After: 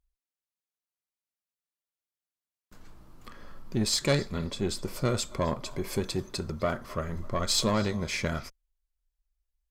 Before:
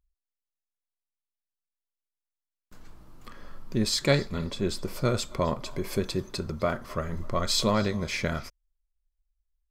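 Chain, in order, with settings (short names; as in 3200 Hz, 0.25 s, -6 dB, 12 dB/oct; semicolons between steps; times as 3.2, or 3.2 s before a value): tube stage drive 16 dB, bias 0.35; dynamic EQ 7900 Hz, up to +4 dB, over -50 dBFS, Q 1.4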